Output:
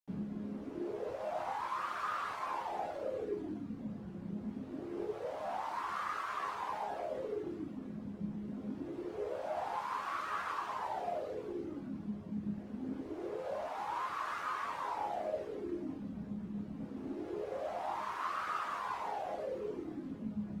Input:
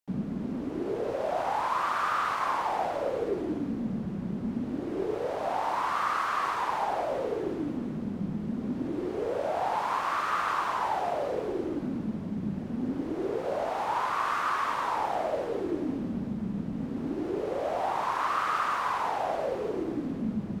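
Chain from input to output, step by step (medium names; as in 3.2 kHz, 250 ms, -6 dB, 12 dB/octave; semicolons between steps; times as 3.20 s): reverb removal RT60 1.1 s; chord resonator C#2 major, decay 0.34 s; trim +4.5 dB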